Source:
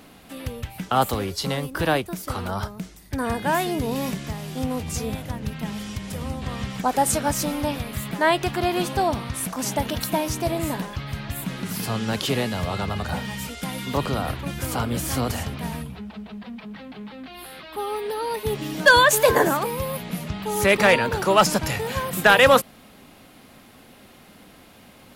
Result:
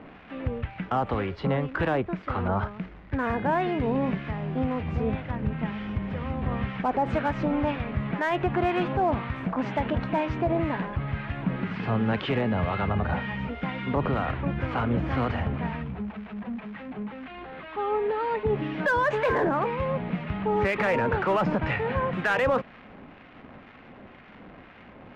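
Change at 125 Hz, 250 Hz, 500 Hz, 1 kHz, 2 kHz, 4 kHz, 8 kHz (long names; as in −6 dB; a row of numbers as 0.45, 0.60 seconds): 0.0 dB, −0.5 dB, −4.0 dB, −4.0 dB, −7.0 dB, −14.0 dB, below −30 dB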